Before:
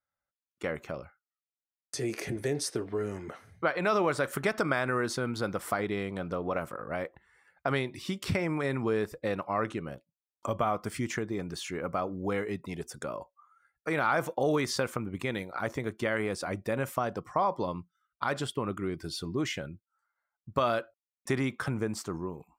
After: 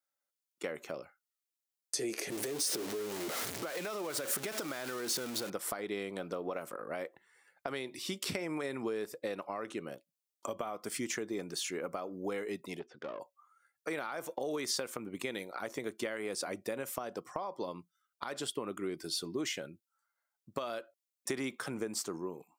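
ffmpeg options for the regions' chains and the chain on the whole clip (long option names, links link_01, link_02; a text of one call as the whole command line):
ffmpeg -i in.wav -filter_complex "[0:a]asettb=1/sr,asplit=3[link_01][link_02][link_03];[link_01]atrim=end=2.304[link_04];[link_02]atrim=start=2.3:end=5.5,asetpts=PTS-STARTPTS,afade=type=in:duration=0.004:curve=qsin,afade=type=out:start_time=3.196:duration=0.004:curve=qsin,aeval=exprs='val(0)+0.5*0.0355*sgn(val(0))':channel_layout=same,acompressor=threshold=-33dB:ratio=4:attack=3.2:release=140:knee=1:detection=peak[link_05];[link_03]atrim=start=5.496[link_06];[link_04][link_05]acrossfade=duration=0.004:curve1=hsin:curve2=qsin[link_07];[link_07][link_06]acrossfade=duration=0.004:curve1=qsin:curve2=hsin,asettb=1/sr,asplit=3[link_08][link_09][link_10];[link_08]atrim=end=12.794[link_11];[link_09]atrim=start=12.79:end=13.2,asetpts=PTS-STARTPTS,afade=type=in:duration=0.004:curve=qsin,afade=type=out:start_time=0.406:duration=0.004:curve=qsin,lowpass=frequency=3100:width=0.5412,lowpass=frequency=3100:width=1.3066,aeval=exprs='(tanh(35.5*val(0)+0.55)-tanh(0.55))/35.5':channel_layout=same[link_12];[link_10]atrim=start=13.196[link_13];[link_11][link_12]acrossfade=duration=0.004:curve1=hsin:curve2=qsin[link_14];[link_14][link_13]acrossfade=duration=0.004:curve1=qsin:curve2=hsin,highpass=380,acompressor=threshold=-33dB:ratio=6,equalizer=frequency=1200:width_type=o:width=2.9:gain=-10,volume=6dB" out.wav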